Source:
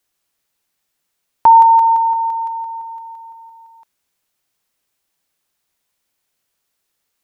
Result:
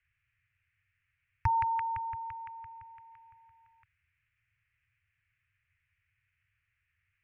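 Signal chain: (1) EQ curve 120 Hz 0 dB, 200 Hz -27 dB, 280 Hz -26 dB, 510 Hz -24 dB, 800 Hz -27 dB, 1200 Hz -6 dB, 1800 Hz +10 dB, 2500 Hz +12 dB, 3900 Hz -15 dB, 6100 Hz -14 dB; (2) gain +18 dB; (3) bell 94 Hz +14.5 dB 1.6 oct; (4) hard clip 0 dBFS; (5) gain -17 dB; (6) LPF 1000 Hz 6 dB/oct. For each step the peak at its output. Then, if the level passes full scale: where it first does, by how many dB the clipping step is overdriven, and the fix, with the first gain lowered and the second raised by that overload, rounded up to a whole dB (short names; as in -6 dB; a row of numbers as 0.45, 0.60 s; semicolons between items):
-8.5, +9.5, +9.0, 0.0, -17.0, -17.5 dBFS; step 2, 9.0 dB; step 2 +9 dB, step 5 -8 dB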